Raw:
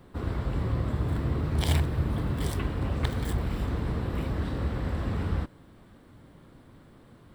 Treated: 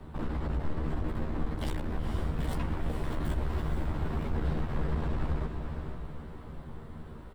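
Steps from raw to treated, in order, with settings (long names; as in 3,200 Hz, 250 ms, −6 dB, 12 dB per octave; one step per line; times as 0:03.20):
high-shelf EQ 2,200 Hz −10.5 dB
in parallel at +0.5 dB: downward compressor, threshold −34 dBFS, peak gain reduction 13.5 dB
on the sum: brickwall limiter −20 dBFS, peak gain reduction 7.5 dB
frequency shifter −110 Hz
hard clipping −30 dBFS, distortion −8 dB
double-tracking delay 13 ms −3 dB
on a send: feedback delay with all-pass diffusion 478 ms, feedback 44%, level −6 dB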